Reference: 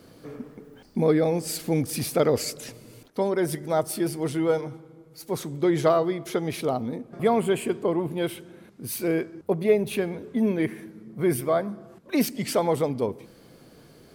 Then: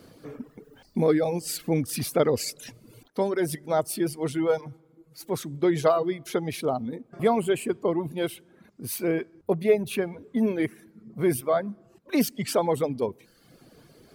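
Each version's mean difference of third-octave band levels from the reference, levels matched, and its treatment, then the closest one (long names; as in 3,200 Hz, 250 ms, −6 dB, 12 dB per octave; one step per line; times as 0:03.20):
3.5 dB: reverb reduction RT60 0.85 s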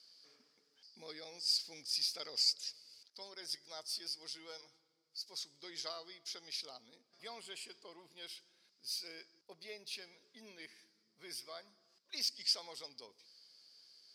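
10.5 dB: resonant band-pass 4,900 Hz, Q 7.9
level +7 dB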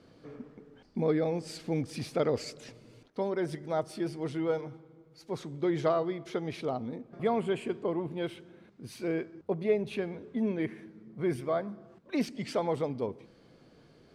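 2.0 dB: low-pass filter 5,200 Hz 12 dB per octave
level −7 dB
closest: third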